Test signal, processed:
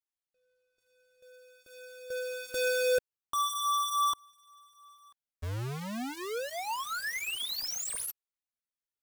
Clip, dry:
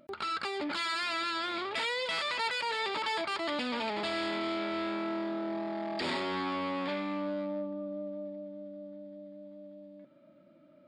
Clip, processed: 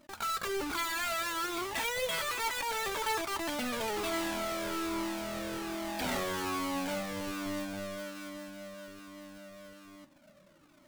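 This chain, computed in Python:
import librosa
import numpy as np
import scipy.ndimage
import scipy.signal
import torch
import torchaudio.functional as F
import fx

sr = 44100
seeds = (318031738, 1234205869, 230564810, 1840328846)

y = fx.halfwave_hold(x, sr)
y = fx.comb_cascade(y, sr, direction='falling', hz=1.2)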